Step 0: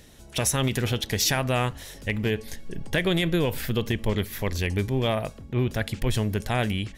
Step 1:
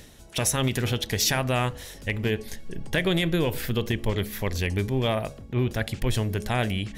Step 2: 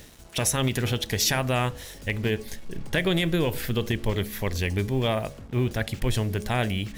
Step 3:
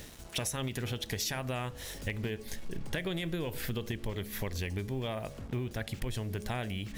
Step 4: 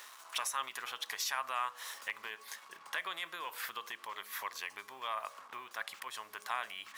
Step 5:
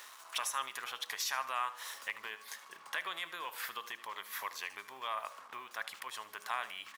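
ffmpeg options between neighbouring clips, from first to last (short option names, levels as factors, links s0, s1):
-af "bandreject=f=69.99:t=h:w=4,bandreject=f=139.98:t=h:w=4,bandreject=f=209.97:t=h:w=4,bandreject=f=279.96:t=h:w=4,bandreject=f=349.95:t=h:w=4,bandreject=f=419.94:t=h:w=4,bandreject=f=489.93:t=h:w=4,bandreject=f=559.92:t=h:w=4,bandreject=f=629.91:t=h:w=4,bandreject=f=699.9:t=h:w=4,bandreject=f=769.89:t=h:w=4,areverse,acompressor=mode=upward:threshold=0.0158:ratio=2.5,areverse"
-af "acrusher=bits=7:mix=0:aa=0.5"
-af "acompressor=threshold=0.0251:ratio=6"
-af "highpass=f=1100:t=q:w=4.9,volume=0.75"
-af "aecho=1:1:76|152|228:0.158|0.0571|0.0205"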